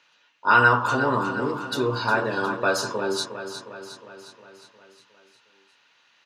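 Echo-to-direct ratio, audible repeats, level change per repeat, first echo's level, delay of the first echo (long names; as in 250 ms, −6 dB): −8.0 dB, 6, −4.5 dB, −10.0 dB, 359 ms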